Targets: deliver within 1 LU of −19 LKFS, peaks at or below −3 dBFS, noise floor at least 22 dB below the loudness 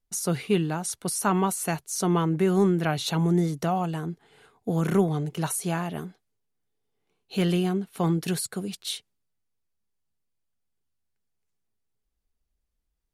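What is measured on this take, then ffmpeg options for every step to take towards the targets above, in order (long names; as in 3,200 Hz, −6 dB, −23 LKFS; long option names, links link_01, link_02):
integrated loudness −26.5 LKFS; sample peak −9.5 dBFS; target loudness −19.0 LKFS
→ -af "volume=7.5dB,alimiter=limit=-3dB:level=0:latency=1"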